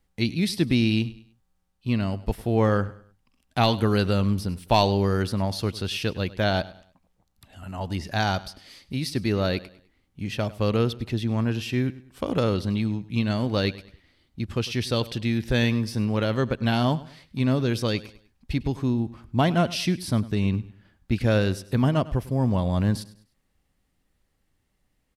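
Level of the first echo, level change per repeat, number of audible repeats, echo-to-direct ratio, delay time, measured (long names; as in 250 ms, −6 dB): −18.5 dB, −9.0 dB, 2, −18.0 dB, 101 ms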